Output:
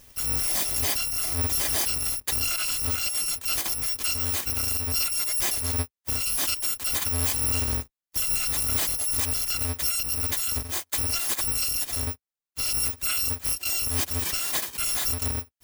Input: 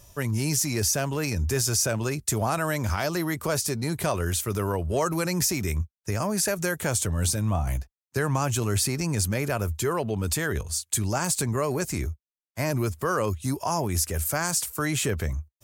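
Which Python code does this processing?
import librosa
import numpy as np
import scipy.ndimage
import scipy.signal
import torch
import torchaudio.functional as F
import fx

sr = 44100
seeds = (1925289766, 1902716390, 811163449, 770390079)

y = fx.bit_reversed(x, sr, seeds[0], block=256)
y = np.clip(y, -10.0 ** (-19.5 / 20.0), 10.0 ** (-19.5 / 20.0))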